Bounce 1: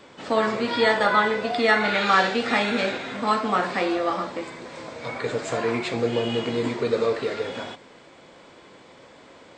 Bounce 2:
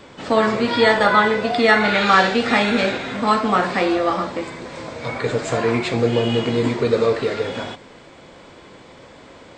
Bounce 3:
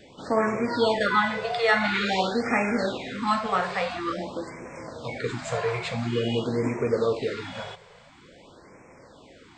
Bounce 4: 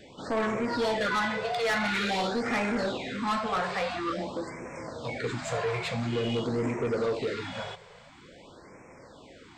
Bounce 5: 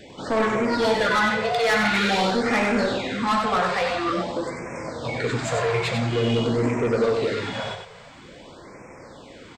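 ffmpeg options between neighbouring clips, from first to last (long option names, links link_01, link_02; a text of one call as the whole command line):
ffmpeg -i in.wav -af "lowshelf=frequency=110:gain=11,volume=4.5dB" out.wav
ffmpeg -i in.wav -af "afftfilt=real='re*(1-between(b*sr/1024,250*pow(3800/250,0.5+0.5*sin(2*PI*0.48*pts/sr))/1.41,250*pow(3800/250,0.5+0.5*sin(2*PI*0.48*pts/sr))*1.41))':imag='im*(1-between(b*sr/1024,250*pow(3800/250,0.5+0.5*sin(2*PI*0.48*pts/sr))/1.41,250*pow(3800/250,0.5+0.5*sin(2*PI*0.48*pts/sr))*1.41))':win_size=1024:overlap=0.75,volume=-6.5dB" out.wav
ffmpeg -i in.wav -af "asoftclip=type=tanh:threshold=-23.5dB" out.wav
ffmpeg -i in.wav -af "aecho=1:1:95:0.531,volume=6dB" out.wav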